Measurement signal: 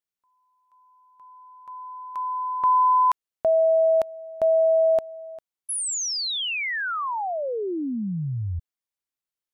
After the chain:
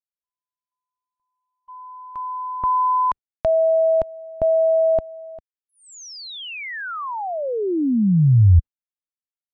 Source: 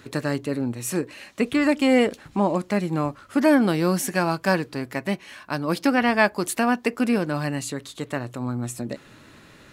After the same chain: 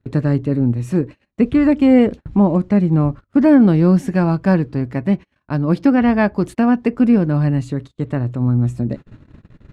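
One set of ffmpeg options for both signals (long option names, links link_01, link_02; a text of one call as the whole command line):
ffmpeg -i in.wav -af "aemphasis=mode=reproduction:type=riaa,agate=range=-31dB:threshold=-41dB:ratio=16:release=105:detection=peak,lowshelf=frequency=430:gain=4.5,volume=-1dB" out.wav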